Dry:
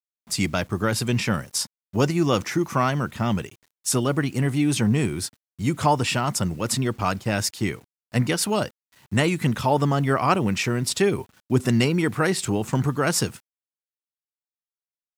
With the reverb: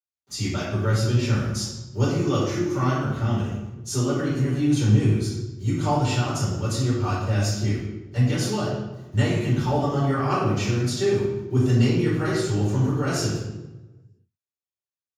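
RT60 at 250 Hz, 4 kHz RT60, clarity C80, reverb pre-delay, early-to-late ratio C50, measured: n/a, 0.75 s, 3.0 dB, 3 ms, 0.0 dB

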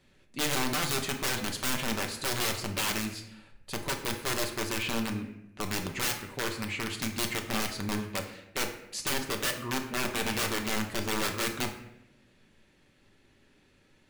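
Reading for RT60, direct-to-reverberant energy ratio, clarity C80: 0.85 s, 3.0 dB, 11.0 dB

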